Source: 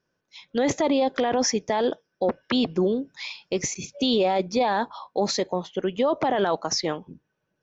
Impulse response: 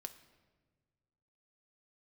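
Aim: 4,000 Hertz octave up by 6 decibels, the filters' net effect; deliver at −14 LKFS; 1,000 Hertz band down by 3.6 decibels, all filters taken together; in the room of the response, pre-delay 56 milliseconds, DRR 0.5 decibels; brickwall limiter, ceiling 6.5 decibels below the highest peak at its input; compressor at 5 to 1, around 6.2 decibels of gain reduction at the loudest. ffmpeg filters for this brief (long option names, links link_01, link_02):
-filter_complex "[0:a]equalizer=frequency=1000:width_type=o:gain=-5.5,equalizer=frequency=4000:width_type=o:gain=8,acompressor=threshold=-23dB:ratio=5,alimiter=limit=-19dB:level=0:latency=1,asplit=2[link_01][link_02];[1:a]atrim=start_sample=2205,adelay=56[link_03];[link_02][link_03]afir=irnorm=-1:irlink=0,volume=4dB[link_04];[link_01][link_04]amix=inputs=2:normalize=0,volume=13dB"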